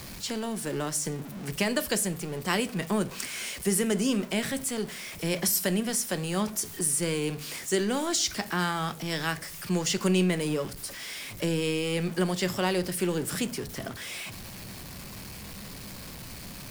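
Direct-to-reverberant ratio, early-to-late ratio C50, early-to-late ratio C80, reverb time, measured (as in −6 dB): 11.5 dB, 19.0 dB, 24.0 dB, 0.45 s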